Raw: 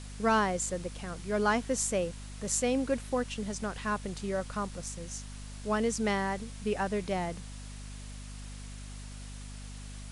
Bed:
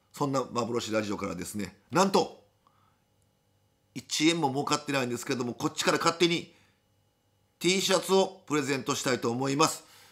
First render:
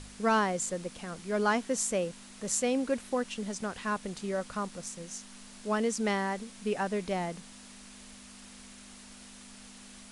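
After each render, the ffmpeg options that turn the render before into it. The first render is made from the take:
-af "bandreject=f=50:t=h:w=4,bandreject=f=100:t=h:w=4,bandreject=f=150:t=h:w=4"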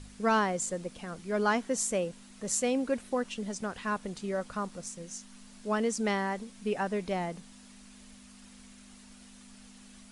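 -af "afftdn=nr=6:nf=-51"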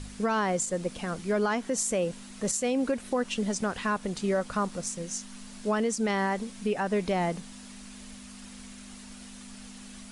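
-af "acontrast=89,alimiter=limit=0.112:level=0:latency=1:release=156"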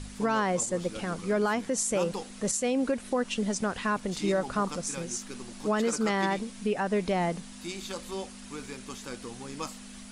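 -filter_complex "[1:a]volume=0.224[s0];[0:a][s0]amix=inputs=2:normalize=0"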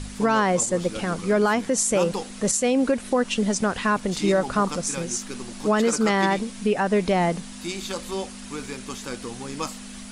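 -af "volume=2.11"

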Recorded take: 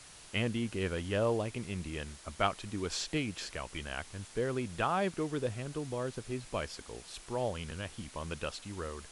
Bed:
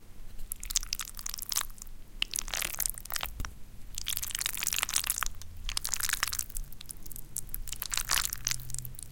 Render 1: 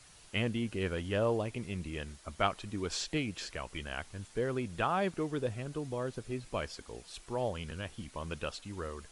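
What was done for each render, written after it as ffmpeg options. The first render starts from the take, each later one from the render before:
-af "afftdn=nr=6:nf=-53"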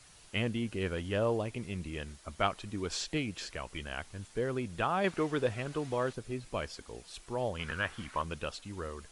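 -filter_complex "[0:a]asettb=1/sr,asplit=3[s0][s1][s2];[s0]atrim=end=5.044[s3];[s1]atrim=start=5.04:end=6.13,asetpts=PTS-STARTPTS,afade=t=in:d=0.004:c=qsin,afade=t=out:st=1.086:d=0.004:c=qsin,equalizer=f=1600:w=0.34:g=8[s4];[s2]atrim=start=6.126[s5];[s3][s4]acrossfade=d=0.004:c1=hsin:c2=qsin[s6];[s6][s5]acrossfade=d=0.004:c1=qsin:c2=hsin,asettb=1/sr,asplit=3[s7][s8][s9];[s7]atrim=end=7.594[s10];[s8]atrim=start=7.59:end=8.22,asetpts=PTS-STARTPTS,afade=t=in:d=0.004:c=qsin,afade=t=out:st=0.626:d=0.004:c=qsin,equalizer=f=1400:w=0.87:g=15[s11];[s9]atrim=start=8.216[s12];[s10][s11]acrossfade=d=0.004:c1=hsin:c2=qsin[s13];[s13][s12]acrossfade=d=0.004:c1=qsin:c2=hsin"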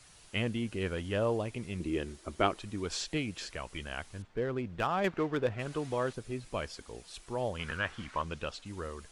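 -filter_complex "[0:a]asettb=1/sr,asplit=3[s0][s1][s2];[s0]atrim=end=1.804[s3];[s1]atrim=start=1.8:end=2.59,asetpts=PTS-STARTPTS,afade=t=in:d=0.004:c=qsin,afade=t=out:st=0.786:d=0.004:c=qsin,equalizer=f=350:t=o:w=0.77:g=13[s4];[s2]atrim=start=2.586[s5];[s3][s4]acrossfade=d=0.004:c1=hsin:c2=qsin[s6];[s6][s5]acrossfade=d=0.004:c1=qsin:c2=hsin,asettb=1/sr,asplit=3[s7][s8][s9];[s7]atrim=end=4.224[s10];[s8]atrim=start=4.22:end=5.6,asetpts=PTS-STARTPTS,afade=t=in:d=0.004:c=qsin,afade=t=out:st=1.376:d=0.004:c=qsin,adynamicsmooth=sensitivity=7:basefreq=2100[s11];[s9]atrim=start=5.596[s12];[s10][s11]acrossfade=d=0.004:c1=hsin:c2=qsin[s13];[s13][s12]acrossfade=d=0.004:c1=qsin:c2=hsin,asettb=1/sr,asplit=3[s14][s15][s16];[s14]atrim=end=7.774[s17];[s15]atrim=start=7.77:end=8.66,asetpts=PTS-STARTPTS,afade=t=in:d=0.004:c=qsin,afade=t=out:st=0.886:d=0.004:c=qsin,lowpass=7400[s18];[s16]atrim=start=8.656[s19];[s17][s18]acrossfade=d=0.004:c1=hsin:c2=qsin[s20];[s20][s19]acrossfade=d=0.004:c1=qsin:c2=hsin"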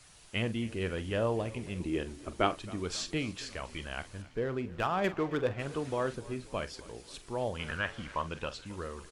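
-filter_complex "[0:a]asplit=2[s0][s1];[s1]adelay=44,volume=0.211[s2];[s0][s2]amix=inputs=2:normalize=0,asplit=7[s3][s4][s5][s6][s7][s8][s9];[s4]adelay=269,afreqshift=-33,volume=0.1[s10];[s5]adelay=538,afreqshift=-66,volume=0.0638[s11];[s6]adelay=807,afreqshift=-99,volume=0.0407[s12];[s7]adelay=1076,afreqshift=-132,volume=0.0263[s13];[s8]adelay=1345,afreqshift=-165,volume=0.0168[s14];[s9]adelay=1614,afreqshift=-198,volume=0.0107[s15];[s3][s10][s11][s12][s13][s14][s15]amix=inputs=7:normalize=0"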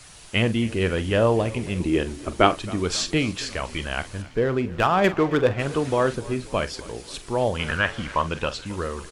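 -af "volume=3.55"

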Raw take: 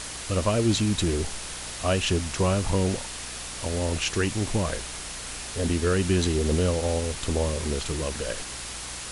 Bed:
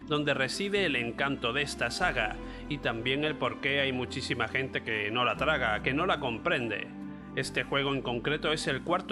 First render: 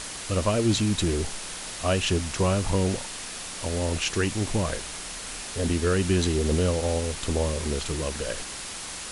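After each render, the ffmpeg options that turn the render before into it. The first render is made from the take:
-af "bandreject=f=60:t=h:w=4,bandreject=f=120:t=h:w=4"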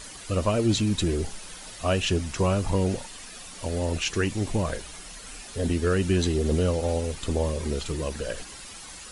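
-af "afftdn=nr=10:nf=-37"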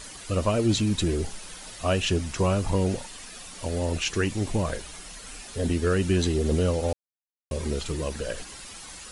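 -filter_complex "[0:a]asplit=3[s0][s1][s2];[s0]atrim=end=6.93,asetpts=PTS-STARTPTS,afade=t=out:st=6.926:d=0.004:c=hsin[s3];[s1]atrim=start=6.93:end=7.51,asetpts=PTS-STARTPTS,volume=0[s4];[s2]atrim=start=7.51,asetpts=PTS-STARTPTS,afade=t=in:d=0.004:c=hsin[s5];[s3][s4][s5]concat=n=3:v=0:a=1"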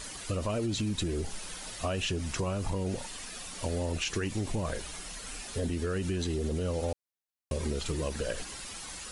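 -af "alimiter=limit=0.119:level=0:latency=1:release=32,acompressor=threshold=0.0398:ratio=6"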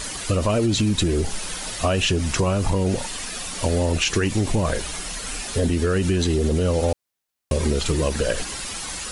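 -af "volume=3.55"

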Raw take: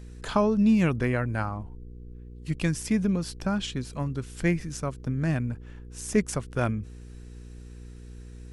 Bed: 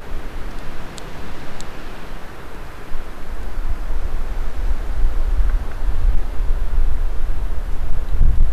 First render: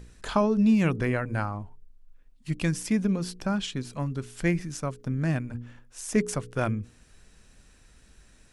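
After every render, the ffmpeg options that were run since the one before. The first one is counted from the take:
-af "bandreject=f=60:t=h:w=4,bandreject=f=120:t=h:w=4,bandreject=f=180:t=h:w=4,bandreject=f=240:t=h:w=4,bandreject=f=300:t=h:w=4,bandreject=f=360:t=h:w=4,bandreject=f=420:t=h:w=4,bandreject=f=480:t=h:w=4"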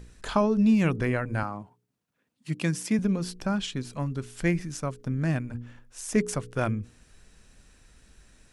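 -filter_complex "[0:a]asettb=1/sr,asplit=3[s0][s1][s2];[s0]atrim=end=1.434[s3];[s1]atrim=start=1.43:end=2.99,asetpts=PTS-STARTPTS,afade=t=in:d=0.004:c=qsin,afade=t=out:st=1.556:d=0.004:c=qsin,highpass=f=130:w=0.5412,highpass=f=130:w=1.3066[s4];[s2]atrim=start=2.986[s5];[s3][s4]acrossfade=d=0.004:c1=hsin:c2=qsin[s6];[s6][s5]acrossfade=d=0.004:c1=qsin:c2=hsin"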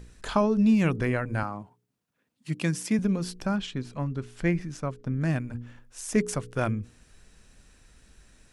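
-filter_complex "[0:a]asettb=1/sr,asplit=3[s0][s1][s2];[s0]atrim=end=3.564[s3];[s1]atrim=start=3.56:end=5.21,asetpts=PTS-STARTPTS,afade=t=in:d=0.004:c=qsin,afade=t=out:st=1.646:d=0.004:c=qsin,aemphasis=mode=reproduction:type=50kf[s4];[s2]atrim=start=5.206[s5];[s3][s4]acrossfade=d=0.004:c1=hsin:c2=qsin[s6];[s6][s5]acrossfade=d=0.004:c1=qsin:c2=hsin"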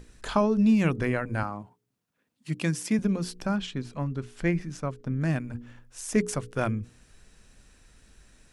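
-af "bandreject=f=60:t=h:w=6,bandreject=f=120:t=h:w=6,bandreject=f=180:t=h:w=6"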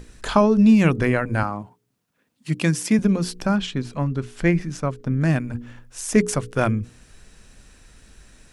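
-af "volume=2.24"

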